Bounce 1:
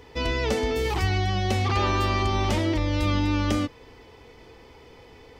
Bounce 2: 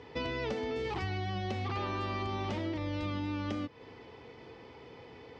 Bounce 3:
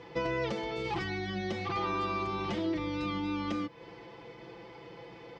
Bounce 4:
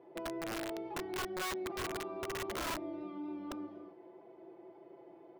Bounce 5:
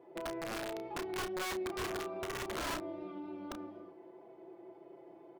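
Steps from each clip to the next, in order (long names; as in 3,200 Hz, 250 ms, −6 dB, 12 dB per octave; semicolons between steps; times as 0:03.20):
Chebyshev band-pass filter 120–4,700 Hz, order 2; high-shelf EQ 3,800 Hz −8 dB; downward compressor 5 to 1, threshold −33 dBFS, peak gain reduction 11 dB
comb filter 5.9 ms, depth 92%
pair of resonant band-passes 480 Hz, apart 0.7 octaves; reverb whose tail is shaped and stops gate 280 ms rising, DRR 6 dB; wrap-around overflow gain 34.5 dB; level +1.5 dB
double-tracking delay 32 ms −8 dB; highs frequency-modulated by the lows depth 0.13 ms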